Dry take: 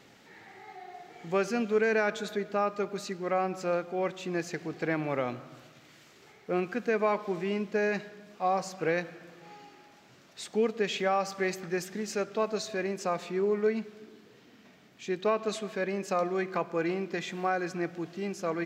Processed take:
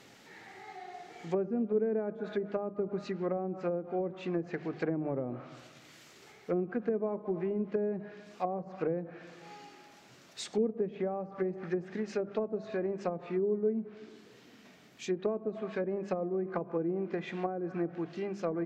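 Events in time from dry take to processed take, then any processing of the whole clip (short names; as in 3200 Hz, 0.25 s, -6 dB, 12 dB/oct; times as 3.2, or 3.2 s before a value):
2.78–3.37 low shelf 190 Hz +5 dB
whole clip: treble ducked by the level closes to 410 Hz, closed at -26 dBFS; high shelf 5700 Hz +5 dB; notches 50/100/150/200 Hz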